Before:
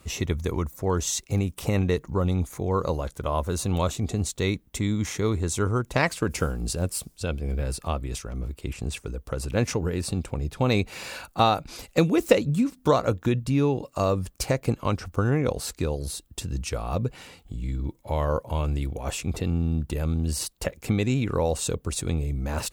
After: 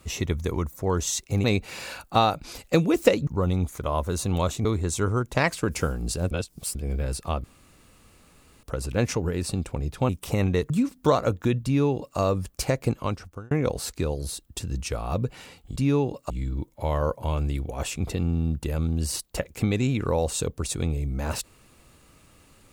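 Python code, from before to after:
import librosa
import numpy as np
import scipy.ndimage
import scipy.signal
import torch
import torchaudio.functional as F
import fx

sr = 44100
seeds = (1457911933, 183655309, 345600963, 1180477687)

y = fx.edit(x, sr, fx.swap(start_s=1.44, length_s=0.61, other_s=10.68, other_length_s=1.83),
    fx.cut(start_s=2.56, length_s=0.62),
    fx.cut(start_s=4.05, length_s=1.19),
    fx.reverse_span(start_s=6.9, length_s=0.44),
    fx.room_tone_fill(start_s=8.03, length_s=1.19),
    fx.duplicate(start_s=13.45, length_s=0.54, to_s=17.57),
    fx.fade_out_span(start_s=14.75, length_s=0.57), tone=tone)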